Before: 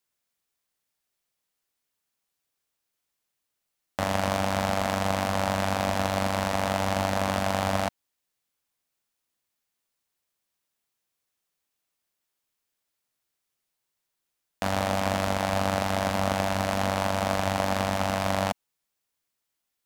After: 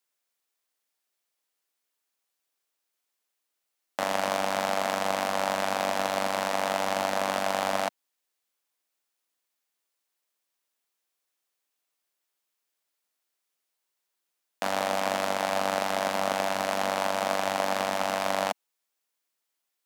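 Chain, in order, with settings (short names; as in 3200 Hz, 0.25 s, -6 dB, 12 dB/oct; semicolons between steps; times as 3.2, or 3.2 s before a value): HPF 310 Hz 12 dB/oct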